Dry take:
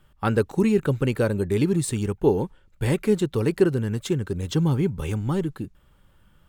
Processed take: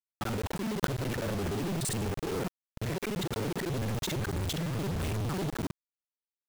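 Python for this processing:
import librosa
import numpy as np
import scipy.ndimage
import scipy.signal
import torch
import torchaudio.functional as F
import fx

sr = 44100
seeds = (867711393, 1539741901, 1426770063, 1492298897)

y = fx.local_reverse(x, sr, ms=42.0)
y = fx.over_compress(y, sr, threshold_db=-28.0, ratio=-1.0)
y = fx.env_lowpass(y, sr, base_hz=430.0, full_db=-21.5)
y = fx.quant_companded(y, sr, bits=2)
y = y * 10.0 ** (-6.0 / 20.0)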